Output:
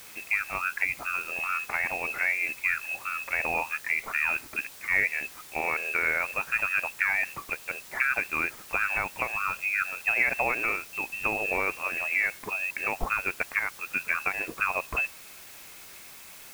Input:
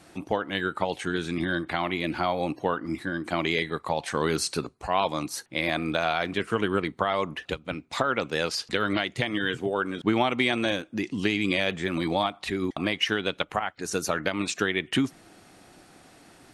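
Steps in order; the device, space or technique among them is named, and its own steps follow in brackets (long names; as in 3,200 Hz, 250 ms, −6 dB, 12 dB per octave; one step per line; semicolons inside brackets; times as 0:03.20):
scrambled radio voice (band-pass filter 310–2,900 Hz; voice inversion scrambler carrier 2,900 Hz; white noise bed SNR 17 dB)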